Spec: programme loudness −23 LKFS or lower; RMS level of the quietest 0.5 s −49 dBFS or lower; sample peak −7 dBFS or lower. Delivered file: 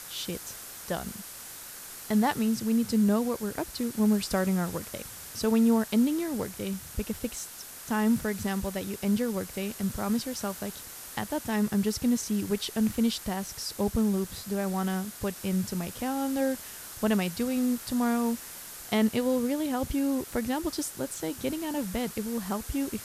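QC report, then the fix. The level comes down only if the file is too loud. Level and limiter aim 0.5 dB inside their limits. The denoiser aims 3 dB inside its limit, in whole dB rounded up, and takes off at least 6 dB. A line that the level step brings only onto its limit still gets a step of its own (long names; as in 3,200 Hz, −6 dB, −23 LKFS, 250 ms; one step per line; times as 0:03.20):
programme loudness −29.5 LKFS: in spec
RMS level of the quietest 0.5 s −43 dBFS: out of spec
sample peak −13.0 dBFS: in spec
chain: broadband denoise 9 dB, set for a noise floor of −43 dBFS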